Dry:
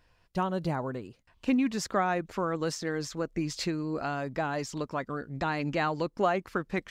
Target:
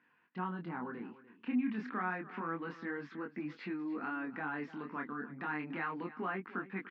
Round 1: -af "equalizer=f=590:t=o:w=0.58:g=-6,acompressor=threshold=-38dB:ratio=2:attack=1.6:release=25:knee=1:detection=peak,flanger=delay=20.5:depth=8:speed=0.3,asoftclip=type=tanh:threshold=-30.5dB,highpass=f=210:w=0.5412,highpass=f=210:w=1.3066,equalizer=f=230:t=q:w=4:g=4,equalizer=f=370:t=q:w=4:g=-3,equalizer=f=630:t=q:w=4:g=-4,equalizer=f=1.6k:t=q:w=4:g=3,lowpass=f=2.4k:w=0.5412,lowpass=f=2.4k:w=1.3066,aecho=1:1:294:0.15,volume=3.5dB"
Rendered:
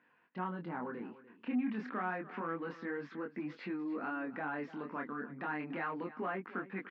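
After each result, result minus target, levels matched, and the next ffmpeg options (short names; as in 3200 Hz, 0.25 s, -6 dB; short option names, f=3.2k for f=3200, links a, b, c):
soft clip: distortion +15 dB; 500 Hz band +3.0 dB
-af "equalizer=f=590:t=o:w=0.58:g=-6,acompressor=threshold=-38dB:ratio=2:attack=1.6:release=25:knee=1:detection=peak,flanger=delay=20.5:depth=8:speed=0.3,asoftclip=type=tanh:threshold=-22.5dB,highpass=f=210:w=0.5412,highpass=f=210:w=1.3066,equalizer=f=230:t=q:w=4:g=4,equalizer=f=370:t=q:w=4:g=-3,equalizer=f=630:t=q:w=4:g=-4,equalizer=f=1.6k:t=q:w=4:g=3,lowpass=f=2.4k:w=0.5412,lowpass=f=2.4k:w=1.3066,aecho=1:1:294:0.15,volume=3.5dB"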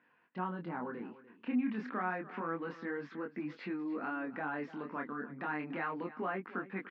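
500 Hz band +2.5 dB
-af "equalizer=f=590:t=o:w=0.58:g=-16.5,acompressor=threshold=-38dB:ratio=2:attack=1.6:release=25:knee=1:detection=peak,flanger=delay=20.5:depth=8:speed=0.3,asoftclip=type=tanh:threshold=-22.5dB,highpass=f=210:w=0.5412,highpass=f=210:w=1.3066,equalizer=f=230:t=q:w=4:g=4,equalizer=f=370:t=q:w=4:g=-3,equalizer=f=630:t=q:w=4:g=-4,equalizer=f=1.6k:t=q:w=4:g=3,lowpass=f=2.4k:w=0.5412,lowpass=f=2.4k:w=1.3066,aecho=1:1:294:0.15,volume=3.5dB"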